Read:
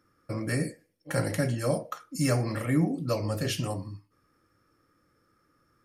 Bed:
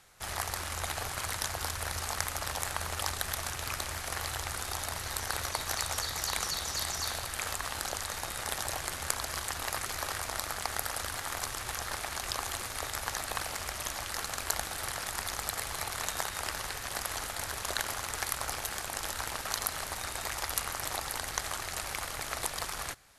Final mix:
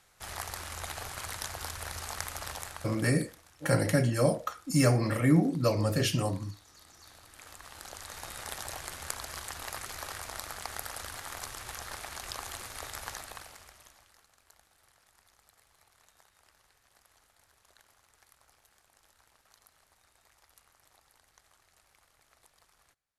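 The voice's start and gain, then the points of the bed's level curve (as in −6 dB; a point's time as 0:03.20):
2.55 s, +2.0 dB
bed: 0:02.51 −4 dB
0:03.44 −23.5 dB
0:06.84 −23.5 dB
0:08.29 −5 dB
0:13.10 −5 dB
0:14.29 −29.5 dB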